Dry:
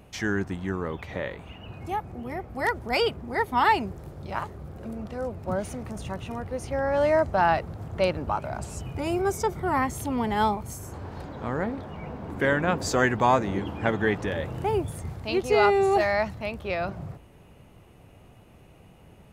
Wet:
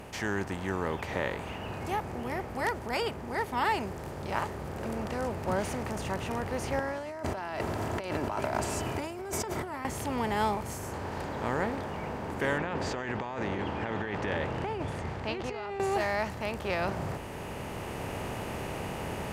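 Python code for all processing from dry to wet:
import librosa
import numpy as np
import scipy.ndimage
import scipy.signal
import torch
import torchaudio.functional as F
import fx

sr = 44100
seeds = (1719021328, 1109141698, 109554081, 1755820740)

y = fx.chain(x, sr, fx.highpass(hz=100.0, slope=12),
    fx.comb(ms=3.0, depth=0.51),
    fx.over_compress(threshold_db=-34.0, ratio=-1.0), at=(6.79, 9.85))
y = fx.chain(y, sr, fx.cheby1_lowpass(hz=3100.0, order=2),
    fx.over_compress(threshold_db=-30.0, ratio=-1.0), at=(12.58, 15.8))
y = fx.bin_compress(y, sr, power=0.6)
y = fx.rider(y, sr, range_db=10, speed_s=2.0)
y = y * 10.0 ** (-8.5 / 20.0)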